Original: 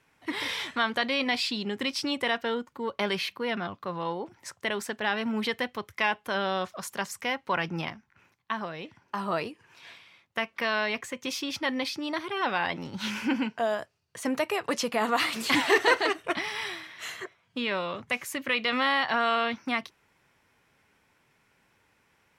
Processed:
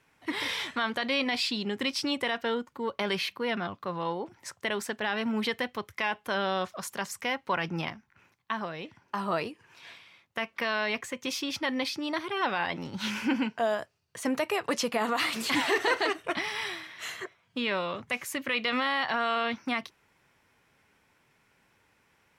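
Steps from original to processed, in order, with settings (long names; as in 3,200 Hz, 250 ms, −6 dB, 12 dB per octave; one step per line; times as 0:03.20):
brickwall limiter −16.5 dBFS, peak gain reduction 5.5 dB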